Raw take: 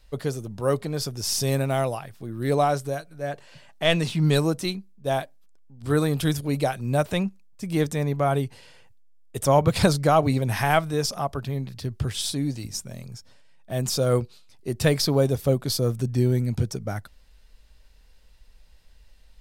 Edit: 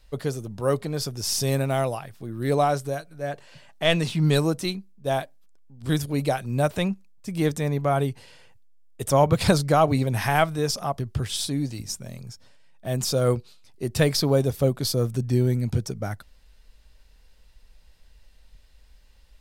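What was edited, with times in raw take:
5.89–6.24 cut
11.34–11.84 cut

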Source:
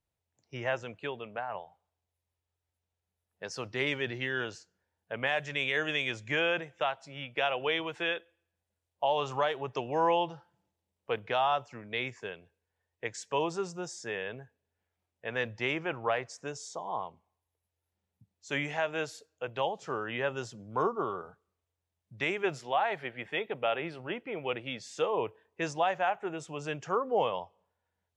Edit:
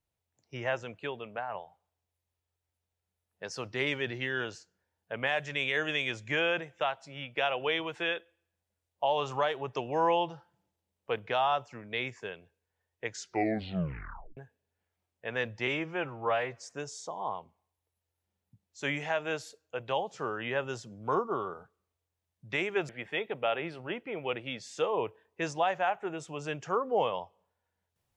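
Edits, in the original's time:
13.09 tape stop 1.28 s
15.67–16.31 stretch 1.5×
22.57–23.09 cut

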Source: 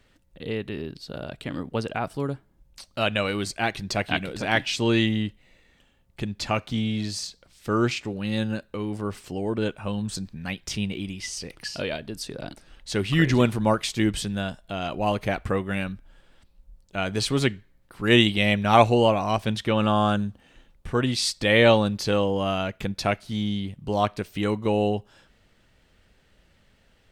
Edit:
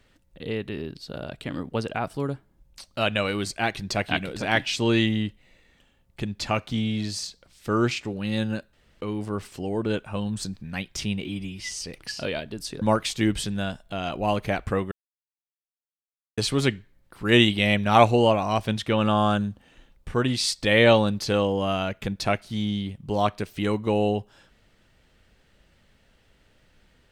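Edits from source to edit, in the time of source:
8.73 insert room tone 0.28 s
10.97–11.28 stretch 1.5×
12.38–13.6 cut
15.7–17.16 mute

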